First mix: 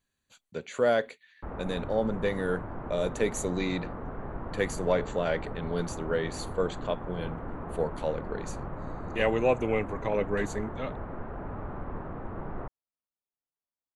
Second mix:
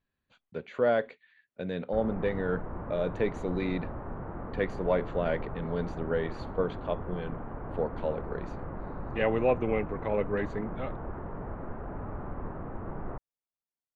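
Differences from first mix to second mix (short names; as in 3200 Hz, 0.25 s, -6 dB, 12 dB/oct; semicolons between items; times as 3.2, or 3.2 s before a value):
background: entry +0.50 s; master: add air absorption 310 m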